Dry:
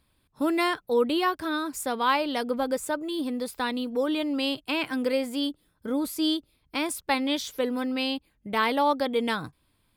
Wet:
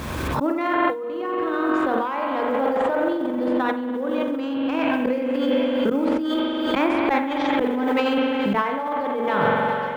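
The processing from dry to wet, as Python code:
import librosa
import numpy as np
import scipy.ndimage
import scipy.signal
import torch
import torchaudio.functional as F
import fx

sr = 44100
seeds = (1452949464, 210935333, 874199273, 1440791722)

y = fx.tracing_dist(x, sr, depth_ms=0.085)
y = scipy.signal.sosfilt(scipy.signal.butter(2, 1800.0, 'lowpass', fs=sr, output='sos'), y)
y = fx.quant_companded(y, sr, bits=8)
y = fx.low_shelf(y, sr, hz=480.0, db=3.5)
y = fx.echo_thinned(y, sr, ms=409, feedback_pct=70, hz=420.0, wet_db=-16.5)
y = fx.rev_spring(y, sr, rt60_s=2.1, pass_ms=(44,), chirp_ms=35, drr_db=1.0)
y = fx.auto_swell(y, sr, attack_ms=135.0)
y = fx.over_compress(y, sr, threshold_db=-29.0, ratio=-1.0)
y = scipy.signal.sosfilt(scipy.signal.butter(2, 45.0, 'highpass', fs=sr, output='sos'), y)
y = fx.low_shelf(y, sr, hz=170.0, db=-8.0)
y = fx.hum_notches(y, sr, base_hz=60, count=5)
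y = fx.pre_swell(y, sr, db_per_s=24.0)
y = y * 10.0 ** (7.5 / 20.0)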